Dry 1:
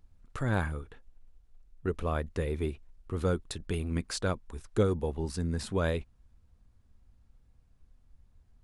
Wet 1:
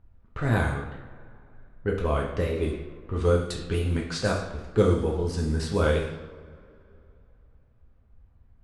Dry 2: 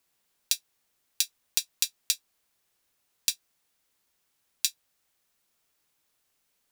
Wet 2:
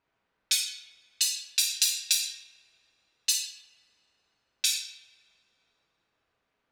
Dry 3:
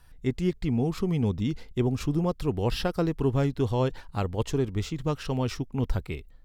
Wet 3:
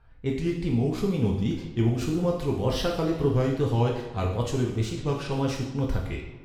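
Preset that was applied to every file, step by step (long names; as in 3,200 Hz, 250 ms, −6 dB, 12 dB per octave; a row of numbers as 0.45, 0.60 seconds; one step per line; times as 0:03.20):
tape wow and flutter 130 cents
coupled-rooms reverb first 0.75 s, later 2.9 s, from −18 dB, DRR −1.5 dB
low-pass that shuts in the quiet parts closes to 1,900 Hz, open at −22 dBFS
loudness normalisation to −27 LKFS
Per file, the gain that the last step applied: +2.5, +2.0, −2.0 decibels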